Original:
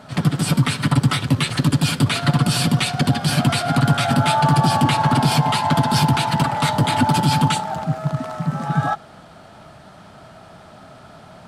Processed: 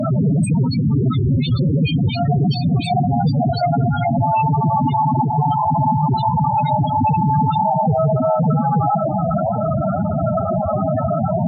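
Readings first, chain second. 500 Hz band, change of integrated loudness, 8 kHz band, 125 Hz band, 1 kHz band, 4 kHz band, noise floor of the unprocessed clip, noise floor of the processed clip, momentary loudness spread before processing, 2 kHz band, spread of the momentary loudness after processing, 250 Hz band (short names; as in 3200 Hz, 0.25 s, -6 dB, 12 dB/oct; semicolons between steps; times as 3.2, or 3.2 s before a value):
+7.0 dB, +0.5 dB, under -10 dB, +2.0 dB, +3.0 dB, -9.5 dB, -44 dBFS, -21 dBFS, 7 LU, -12.0 dB, 3 LU, +2.0 dB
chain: dynamic EQ 1500 Hz, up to -6 dB, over -37 dBFS, Q 1.8; in parallel at +1.5 dB: compressor, threshold -32 dBFS, peak gain reduction 19.5 dB; on the sum: soft clip -18.5 dBFS, distortion -8 dB; vibrato 0.53 Hz 7.2 cents; fuzz box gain 57 dB, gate -59 dBFS; high shelf 10000 Hz -2.5 dB; on a send: echo with dull and thin repeats by turns 0.2 s, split 970 Hz, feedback 69%, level -11 dB; on the sum: loudest bins only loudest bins 8; MP3 96 kbps 48000 Hz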